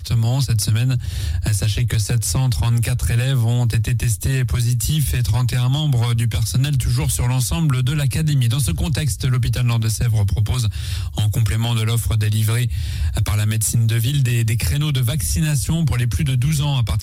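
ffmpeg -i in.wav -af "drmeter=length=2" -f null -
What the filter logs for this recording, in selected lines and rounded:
Channel 1: DR: 7.5
Overall DR: 7.5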